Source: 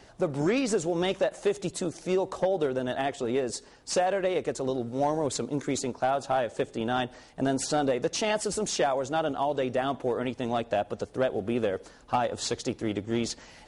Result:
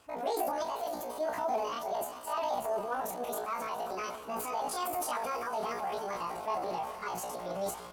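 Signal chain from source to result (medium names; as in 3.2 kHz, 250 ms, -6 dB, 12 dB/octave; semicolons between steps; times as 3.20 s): plain phase-vocoder stretch 0.58×; Chebyshev shaper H 6 -39 dB, 8 -40 dB, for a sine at -14.5 dBFS; echo that smears into a reverb 469 ms, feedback 73%, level -15 dB; dynamic bell 400 Hz, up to +7 dB, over -43 dBFS, Q 2; transient shaper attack -3 dB, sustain +7 dB; doubling 28 ms -6 dB; pitch shift +9 st; trim -7.5 dB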